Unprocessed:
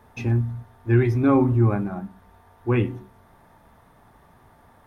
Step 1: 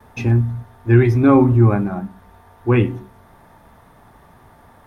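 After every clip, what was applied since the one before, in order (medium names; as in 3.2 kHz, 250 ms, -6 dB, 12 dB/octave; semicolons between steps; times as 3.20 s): gate with hold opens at -49 dBFS; trim +6 dB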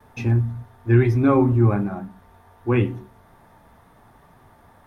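flange 0.93 Hz, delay 6.3 ms, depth 5.9 ms, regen -61%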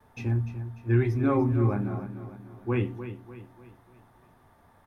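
feedback delay 297 ms, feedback 45%, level -11.5 dB; trim -7.5 dB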